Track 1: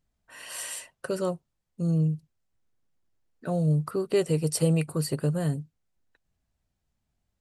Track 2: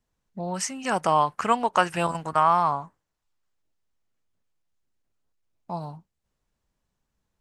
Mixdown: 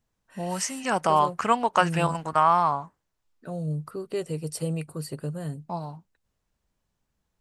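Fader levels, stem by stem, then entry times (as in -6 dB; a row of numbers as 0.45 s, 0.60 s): -6.0 dB, 0.0 dB; 0.00 s, 0.00 s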